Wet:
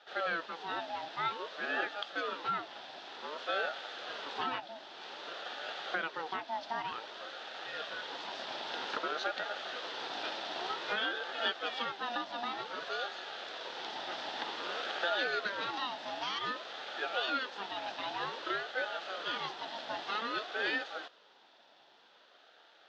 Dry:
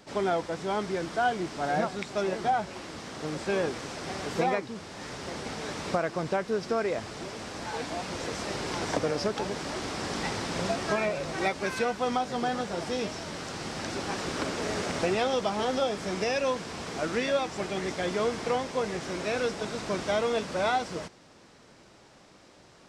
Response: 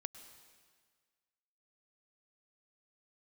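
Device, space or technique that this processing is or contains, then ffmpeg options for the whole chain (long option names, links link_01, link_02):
voice changer toy: -af "aeval=exprs='val(0)*sin(2*PI*740*n/s+740*0.4/0.53*sin(2*PI*0.53*n/s))':channel_layout=same,highpass=550,equalizer=frequency=1100:width_type=q:width=4:gain=-9,equalizer=frequency=2200:width_type=q:width=4:gain=-8,equalizer=frequency=3500:width_type=q:width=4:gain=7,lowpass=frequency=4200:width=0.5412,lowpass=frequency=4200:width=1.3066"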